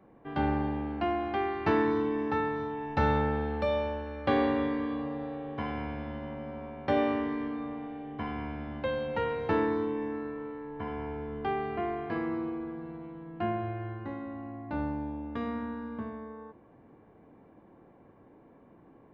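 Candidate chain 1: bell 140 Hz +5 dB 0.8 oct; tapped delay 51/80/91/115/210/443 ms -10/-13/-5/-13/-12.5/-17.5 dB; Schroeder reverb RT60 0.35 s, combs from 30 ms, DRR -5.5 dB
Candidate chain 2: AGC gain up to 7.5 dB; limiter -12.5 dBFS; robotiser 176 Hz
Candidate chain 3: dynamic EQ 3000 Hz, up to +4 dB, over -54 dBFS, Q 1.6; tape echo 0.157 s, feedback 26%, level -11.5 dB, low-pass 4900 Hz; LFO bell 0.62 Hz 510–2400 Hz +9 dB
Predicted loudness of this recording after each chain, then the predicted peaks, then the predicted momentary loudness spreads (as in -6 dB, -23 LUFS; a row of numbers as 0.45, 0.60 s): -22.5, -29.5, -30.0 LUFS; -6.0, -8.5, -11.0 dBFS; 12, 11, 13 LU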